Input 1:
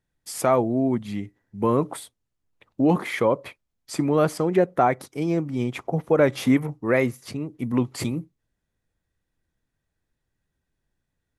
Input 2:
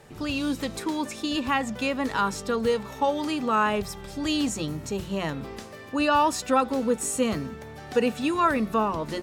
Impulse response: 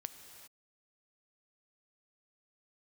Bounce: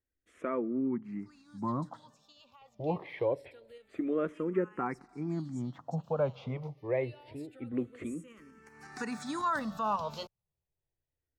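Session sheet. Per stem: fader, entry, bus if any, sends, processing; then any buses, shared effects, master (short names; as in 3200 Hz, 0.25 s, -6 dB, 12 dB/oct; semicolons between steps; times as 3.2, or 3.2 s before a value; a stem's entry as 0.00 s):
-9.0 dB, 0.00 s, send -17 dB, Bessel low-pass 1800 Hz, order 2
+1.0 dB, 1.05 s, no send, low shelf 430 Hz -9.5 dB; limiter -20 dBFS, peak gain reduction 8.5 dB; tremolo saw up 5.5 Hz, depth 40%; auto duck -23 dB, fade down 1.35 s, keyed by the first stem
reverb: on, pre-delay 3 ms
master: high shelf 10000 Hz -6.5 dB; endless phaser -0.26 Hz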